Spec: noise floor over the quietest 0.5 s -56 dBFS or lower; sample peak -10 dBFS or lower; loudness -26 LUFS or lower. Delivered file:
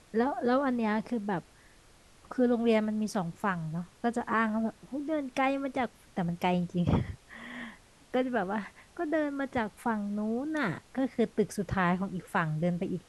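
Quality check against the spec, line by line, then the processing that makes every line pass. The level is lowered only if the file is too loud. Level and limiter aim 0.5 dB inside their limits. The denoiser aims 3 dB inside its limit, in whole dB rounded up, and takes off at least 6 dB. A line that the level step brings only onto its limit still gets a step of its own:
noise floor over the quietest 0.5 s -58 dBFS: OK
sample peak -13.5 dBFS: OK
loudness -31.0 LUFS: OK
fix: none

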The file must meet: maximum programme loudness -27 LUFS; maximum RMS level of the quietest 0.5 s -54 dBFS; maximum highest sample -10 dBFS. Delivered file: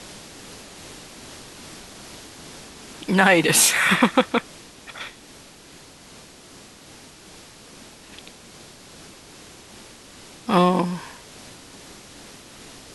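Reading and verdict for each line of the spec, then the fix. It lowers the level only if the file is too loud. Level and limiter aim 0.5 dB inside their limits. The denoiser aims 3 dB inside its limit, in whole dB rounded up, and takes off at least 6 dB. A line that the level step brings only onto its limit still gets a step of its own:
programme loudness -18.5 LUFS: fail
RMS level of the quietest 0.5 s -46 dBFS: fail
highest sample -2.0 dBFS: fail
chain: gain -9 dB

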